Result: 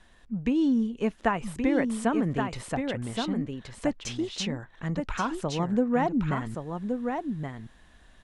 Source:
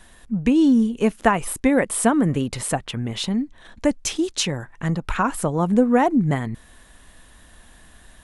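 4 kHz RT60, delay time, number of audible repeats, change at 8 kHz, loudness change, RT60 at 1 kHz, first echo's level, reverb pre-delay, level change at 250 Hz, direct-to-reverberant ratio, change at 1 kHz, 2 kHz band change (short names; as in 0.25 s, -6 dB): none, 1.123 s, 1, -14.0 dB, -8.0 dB, none, -5.5 dB, none, -7.0 dB, none, -7.0 dB, -7.0 dB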